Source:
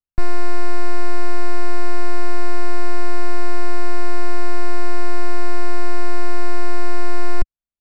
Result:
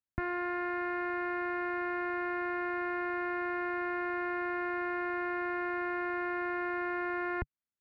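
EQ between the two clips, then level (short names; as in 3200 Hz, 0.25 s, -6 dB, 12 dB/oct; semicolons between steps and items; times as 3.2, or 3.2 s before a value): speaker cabinet 100–2200 Hz, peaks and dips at 140 Hz -5 dB, 350 Hz -5 dB, 500 Hz -6 dB, 710 Hz -7 dB, 1100 Hz -5 dB; 0.0 dB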